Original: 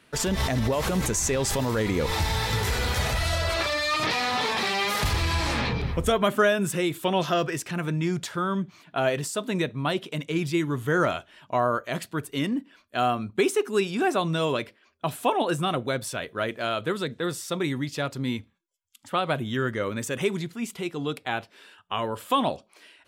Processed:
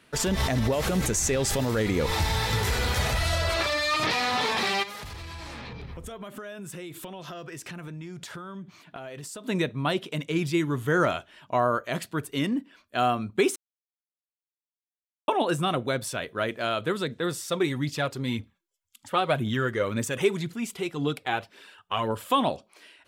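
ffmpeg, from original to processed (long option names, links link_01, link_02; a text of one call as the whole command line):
ffmpeg -i in.wav -filter_complex "[0:a]asettb=1/sr,asplit=3[link_01][link_02][link_03];[link_01]atrim=end=0.724[link_04];[link_02]atrim=start=0.72:end=1.97,asetpts=PTS-STARTPTS,afade=type=in:duration=0.004:curve=qsin,afade=type=out:start_time=1.246:duration=0.004:curve=qsin,equalizer=frequency=1000:width_type=o:width=0.23:gain=-7.5[link_05];[link_03]atrim=start=1.966[link_06];[link_04][link_05]acrossfade=duration=0.004:curve1=hsin:curve2=qsin[link_07];[link_07][link_06]acrossfade=duration=0.004:curve1=qsin:curve2=hsin,asplit=3[link_08][link_09][link_10];[link_08]afade=type=out:start_time=4.82:duration=0.02[link_11];[link_09]acompressor=threshold=-35dB:ratio=20:attack=3.2:release=140:knee=1:detection=peak,afade=type=in:start_time=4.82:duration=0.02,afade=type=out:start_time=9.44:duration=0.02[link_12];[link_10]afade=type=in:start_time=9.44:duration=0.02[link_13];[link_11][link_12][link_13]amix=inputs=3:normalize=0,asplit=3[link_14][link_15][link_16];[link_14]afade=type=out:start_time=17.47:duration=0.02[link_17];[link_15]aphaser=in_gain=1:out_gain=1:delay=2.8:decay=0.39:speed=1.9:type=triangular,afade=type=in:start_time=17.47:duration=0.02,afade=type=out:start_time=22.29:duration=0.02[link_18];[link_16]afade=type=in:start_time=22.29:duration=0.02[link_19];[link_17][link_18][link_19]amix=inputs=3:normalize=0,asplit=3[link_20][link_21][link_22];[link_20]atrim=end=13.56,asetpts=PTS-STARTPTS,afade=type=out:start_time=13.556:duration=0.004:curve=hsin[link_23];[link_21]atrim=start=13.56:end=15.28,asetpts=PTS-STARTPTS,volume=0[link_24];[link_22]atrim=start=15.28,asetpts=PTS-STARTPTS,afade=type=in:duration=0.004:curve=hsin[link_25];[link_23][link_24][link_25]concat=n=3:v=0:a=1" out.wav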